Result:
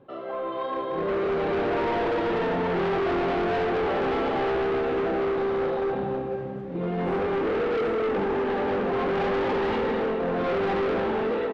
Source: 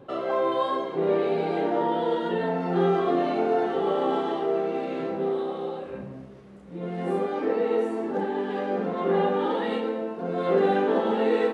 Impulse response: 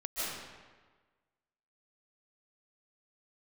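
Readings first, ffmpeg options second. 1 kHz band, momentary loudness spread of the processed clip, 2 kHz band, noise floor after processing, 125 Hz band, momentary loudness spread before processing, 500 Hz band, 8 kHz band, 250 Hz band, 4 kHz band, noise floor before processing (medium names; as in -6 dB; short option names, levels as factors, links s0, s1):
0.0 dB, 5 LU, +5.0 dB, -33 dBFS, +1.0 dB, 8 LU, 0.0 dB, no reading, -0.5 dB, +1.5 dB, -41 dBFS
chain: -filter_complex "[0:a]asplit=2[s0][s1];[1:a]atrim=start_sample=2205,asetrate=29547,aresample=44100[s2];[s1][s2]afir=irnorm=-1:irlink=0,volume=0.316[s3];[s0][s3]amix=inputs=2:normalize=0,asoftclip=type=tanh:threshold=0.211,asplit=2[s4][s5];[s5]adelay=167,lowpass=f=2000:p=1,volume=0.126,asplit=2[s6][s7];[s7]adelay=167,lowpass=f=2000:p=1,volume=0.34,asplit=2[s8][s9];[s9]adelay=167,lowpass=f=2000:p=1,volume=0.34[s10];[s4][s6][s8][s10]amix=inputs=4:normalize=0,dynaudnorm=f=220:g=11:m=4.47,volume=5.96,asoftclip=hard,volume=0.168,lowpass=3400,volume=0.398"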